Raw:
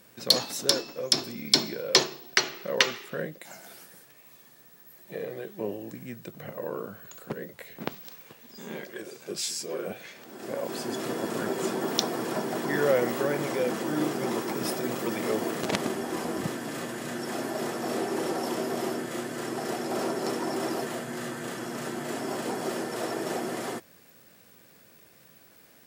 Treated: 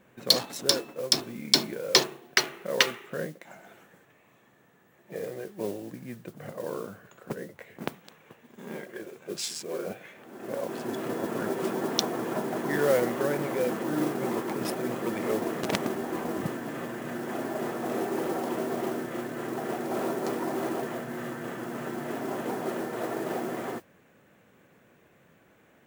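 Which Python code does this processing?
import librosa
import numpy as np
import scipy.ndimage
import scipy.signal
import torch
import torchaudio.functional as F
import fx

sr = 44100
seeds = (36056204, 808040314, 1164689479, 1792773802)

y = fx.wiener(x, sr, points=9)
y = fx.mod_noise(y, sr, seeds[0], snr_db=18)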